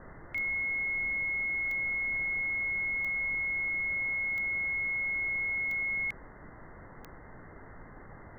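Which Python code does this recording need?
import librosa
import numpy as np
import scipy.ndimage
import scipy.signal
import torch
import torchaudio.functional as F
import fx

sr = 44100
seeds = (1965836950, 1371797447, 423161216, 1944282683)

y = fx.fix_declick_ar(x, sr, threshold=10.0)
y = fx.noise_reduce(y, sr, print_start_s=6.27, print_end_s=6.77, reduce_db=30.0)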